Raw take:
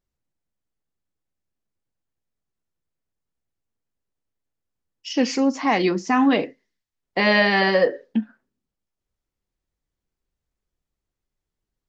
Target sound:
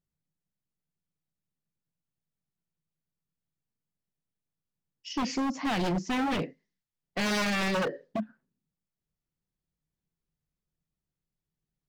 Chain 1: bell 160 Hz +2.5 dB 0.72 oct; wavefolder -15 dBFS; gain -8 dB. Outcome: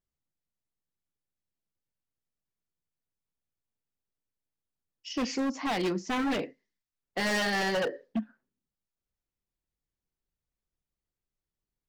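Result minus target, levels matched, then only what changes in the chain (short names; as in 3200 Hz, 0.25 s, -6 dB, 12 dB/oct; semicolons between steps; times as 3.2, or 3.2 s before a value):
125 Hz band -5.0 dB
change: bell 160 Hz +14.5 dB 0.72 oct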